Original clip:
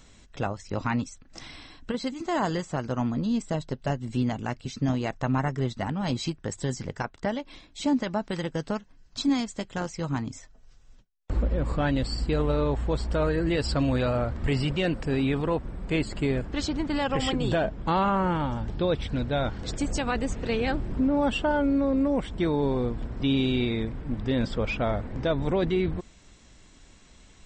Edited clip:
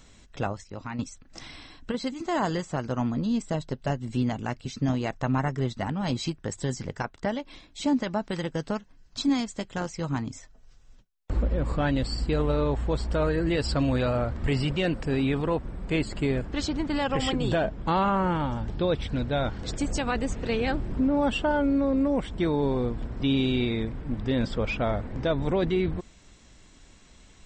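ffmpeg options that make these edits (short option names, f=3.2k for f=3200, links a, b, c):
-filter_complex "[0:a]asplit=3[a][b][c];[a]atrim=end=0.642[d];[b]atrim=start=0.638:end=0.992,asetpts=PTS-STARTPTS,volume=-8.5dB[e];[c]atrim=start=0.988[f];[d][e]acrossfade=d=0.004:c1=hsin:c2=hsin[g];[g][f]acrossfade=d=0.004:c1=hsin:c2=hsin"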